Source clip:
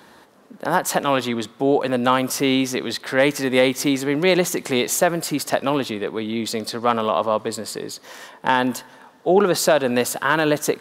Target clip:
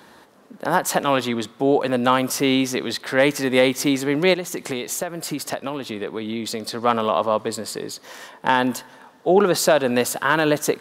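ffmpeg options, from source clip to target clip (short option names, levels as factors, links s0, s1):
-filter_complex "[0:a]asplit=3[s0][s1][s2];[s0]afade=t=out:st=4.33:d=0.02[s3];[s1]acompressor=threshold=0.0708:ratio=10,afade=t=in:st=4.33:d=0.02,afade=t=out:st=6.76:d=0.02[s4];[s2]afade=t=in:st=6.76:d=0.02[s5];[s3][s4][s5]amix=inputs=3:normalize=0"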